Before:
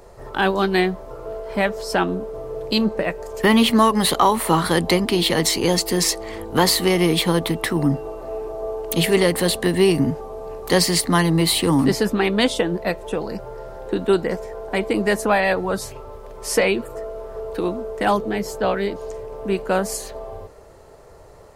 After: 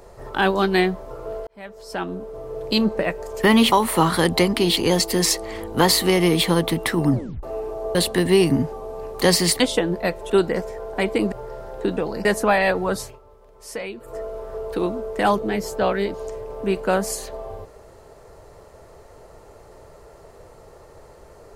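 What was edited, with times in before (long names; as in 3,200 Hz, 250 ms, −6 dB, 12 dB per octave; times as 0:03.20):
0:01.47–0:02.78: fade in linear
0:03.72–0:04.24: remove
0:05.29–0:05.55: remove
0:07.90: tape stop 0.31 s
0:08.73–0:09.43: remove
0:11.08–0:12.42: remove
0:13.12–0:13.40: swap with 0:14.05–0:15.07
0:15.81–0:17.01: duck −13 dB, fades 0.20 s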